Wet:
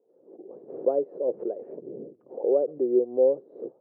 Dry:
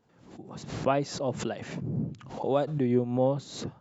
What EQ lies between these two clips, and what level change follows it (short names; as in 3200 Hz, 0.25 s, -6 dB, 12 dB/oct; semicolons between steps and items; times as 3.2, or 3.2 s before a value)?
Butterworth band-pass 450 Hz, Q 2.3; air absorption 360 m; +8.5 dB